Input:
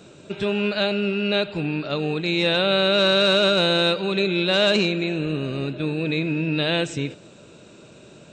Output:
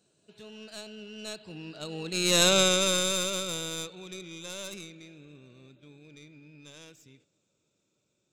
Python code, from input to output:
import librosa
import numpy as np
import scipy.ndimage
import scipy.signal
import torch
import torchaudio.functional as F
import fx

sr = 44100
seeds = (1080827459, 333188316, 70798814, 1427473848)

y = fx.tracing_dist(x, sr, depth_ms=0.065)
y = fx.doppler_pass(y, sr, speed_mps=18, closest_m=3.4, pass_at_s=2.49)
y = fx.bass_treble(y, sr, bass_db=1, treble_db=12)
y = y * 10.0 ** (-3.5 / 20.0)